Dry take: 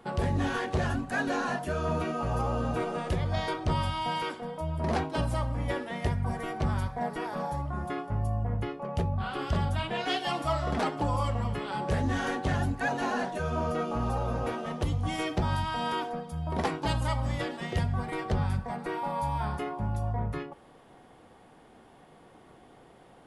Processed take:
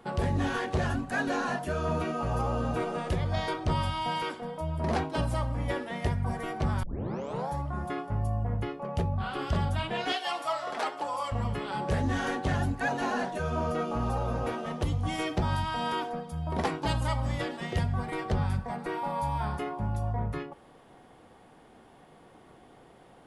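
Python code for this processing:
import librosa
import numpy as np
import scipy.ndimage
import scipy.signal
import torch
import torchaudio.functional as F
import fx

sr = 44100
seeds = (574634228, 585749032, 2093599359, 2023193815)

y = fx.highpass(x, sr, hz=560.0, slope=12, at=(10.12, 11.32))
y = fx.edit(y, sr, fx.tape_start(start_s=6.83, length_s=0.66), tone=tone)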